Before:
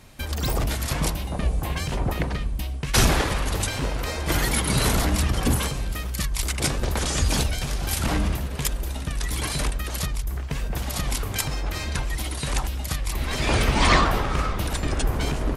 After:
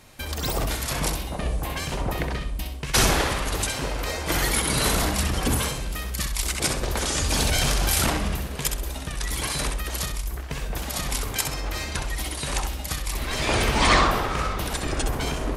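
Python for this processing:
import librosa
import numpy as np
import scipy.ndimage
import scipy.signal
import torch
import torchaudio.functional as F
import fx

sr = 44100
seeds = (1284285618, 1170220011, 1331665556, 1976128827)

y = fx.bass_treble(x, sr, bass_db=-5, treble_db=1)
y = fx.echo_feedback(y, sr, ms=65, feedback_pct=28, wet_db=-7.0)
y = fx.env_flatten(y, sr, amount_pct=100, at=(7.4, 8.1))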